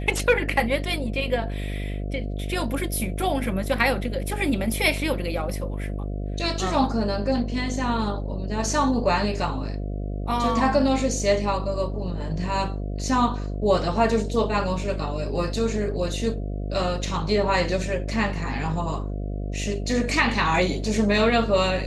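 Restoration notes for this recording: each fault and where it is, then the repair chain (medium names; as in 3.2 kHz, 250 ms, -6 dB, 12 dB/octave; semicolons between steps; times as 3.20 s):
buzz 50 Hz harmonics 14 -29 dBFS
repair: de-hum 50 Hz, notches 14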